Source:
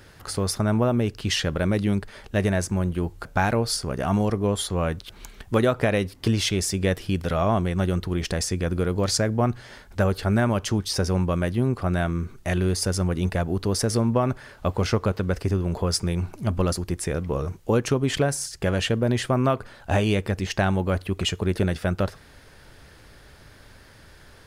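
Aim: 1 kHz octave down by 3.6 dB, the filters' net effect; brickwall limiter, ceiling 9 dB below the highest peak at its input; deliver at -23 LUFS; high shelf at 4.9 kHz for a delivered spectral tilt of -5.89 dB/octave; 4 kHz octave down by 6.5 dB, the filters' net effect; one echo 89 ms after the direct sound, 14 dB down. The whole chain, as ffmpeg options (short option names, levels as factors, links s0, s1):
-af "equalizer=f=1000:t=o:g=-4.5,equalizer=f=4000:t=o:g=-5.5,highshelf=f=4900:g=-6.5,alimiter=limit=0.119:level=0:latency=1,aecho=1:1:89:0.2,volume=2"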